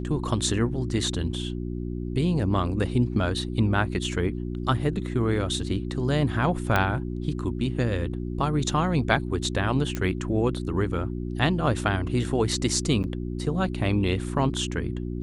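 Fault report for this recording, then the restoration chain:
hum 60 Hz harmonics 6 -31 dBFS
6.76 s: pop -9 dBFS
9.95 s: pop -15 dBFS
13.03–13.04 s: dropout 9.3 ms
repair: de-click; de-hum 60 Hz, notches 6; interpolate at 13.03 s, 9.3 ms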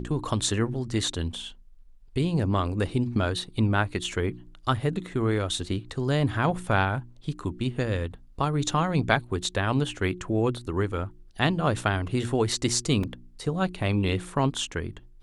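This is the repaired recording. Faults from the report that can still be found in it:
nothing left

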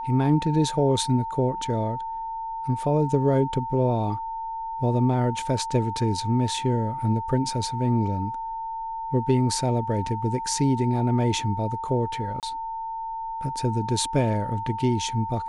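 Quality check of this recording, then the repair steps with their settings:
whine 900 Hz -29 dBFS
12.40–12.43 s: dropout 28 ms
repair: band-stop 900 Hz, Q 30; interpolate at 12.40 s, 28 ms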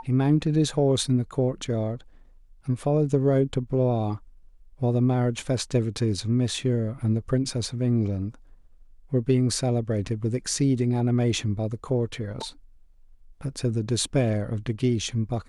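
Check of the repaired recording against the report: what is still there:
nothing left

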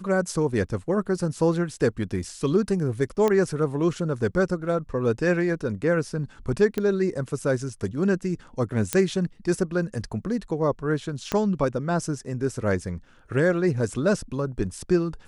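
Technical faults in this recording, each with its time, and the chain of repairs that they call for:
3.28 s: pop -11 dBFS
6.78 s: pop -14 dBFS
8.93 s: pop -7 dBFS
11.32 s: pop -11 dBFS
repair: de-click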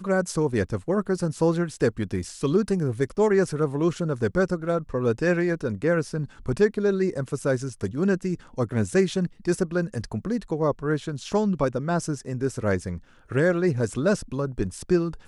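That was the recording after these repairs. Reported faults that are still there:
11.32 s: pop

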